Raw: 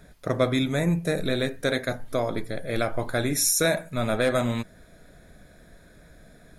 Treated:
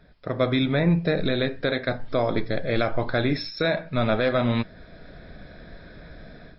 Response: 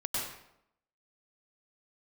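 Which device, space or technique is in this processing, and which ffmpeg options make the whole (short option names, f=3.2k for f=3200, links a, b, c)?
low-bitrate web radio: -af "dynaudnorm=f=340:g=3:m=12dB,alimiter=limit=-8dB:level=0:latency=1:release=233,volume=-3.5dB" -ar 12000 -c:a libmp3lame -b:a 40k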